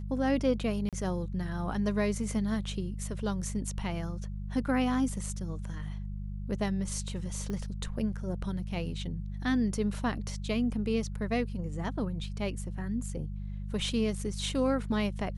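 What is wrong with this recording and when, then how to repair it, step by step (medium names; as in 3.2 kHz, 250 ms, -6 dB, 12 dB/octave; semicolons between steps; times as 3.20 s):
hum 50 Hz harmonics 4 -37 dBFS
0.89–0.93 s: dropout 37 ms
7.50 s: pop -25 dBFS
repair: de-click; de-hum 50 Hz, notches 4; interpolate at 0.89 s, 37 ms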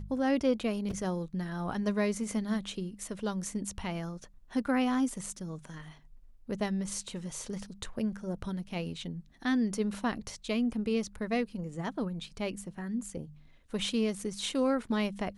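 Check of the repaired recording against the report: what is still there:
7.50 s: pop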